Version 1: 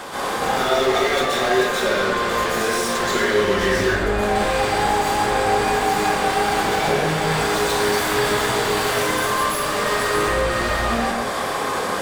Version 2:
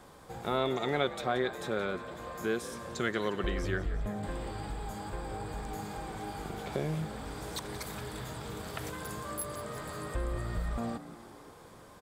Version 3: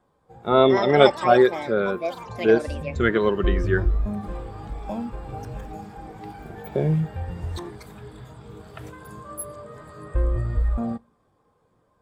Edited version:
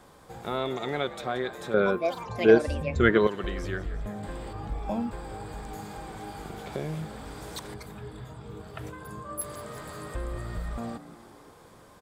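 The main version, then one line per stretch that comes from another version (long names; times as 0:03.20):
2
0:01.74–0:03.27: punch in from 3
0:04.53–0:05.11: punch in from 3
0:07.74–0:09.41: punch in from 3
not used: 1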